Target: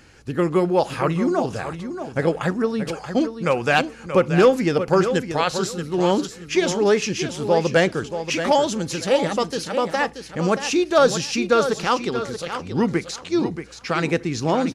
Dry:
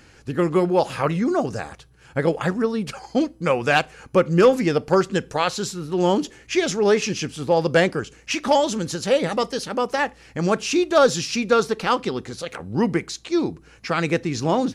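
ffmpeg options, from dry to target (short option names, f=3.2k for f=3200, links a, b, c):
-af "aecho=1:1:630|1260|1890:0.335|0.0737|0.0162"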